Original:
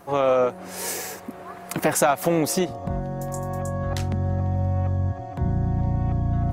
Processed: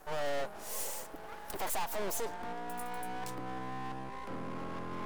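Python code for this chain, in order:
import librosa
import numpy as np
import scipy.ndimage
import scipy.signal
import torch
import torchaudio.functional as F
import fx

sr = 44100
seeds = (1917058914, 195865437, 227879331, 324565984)

y = fx.speed_glide(x, sr, from_pct=108, to_pct=150)
y = scipy.signal.sosfilt(scipy.signal.butter(2, 410.0, 'highpass', fs=sr, output='sos'), y)
y = fx.peak_eq(y, sr, hz=2300.0, db=-9.0, octaves=0.94)
y = fx.notch(y, sr, hz=1300.0, q=12.0)
y = fx.tube_stage(y, sr, drive_db=27.0, bias=0.4)
y = np.maximum(y, 0.0)
y = y * librosa.db_to_amplitude(1.0)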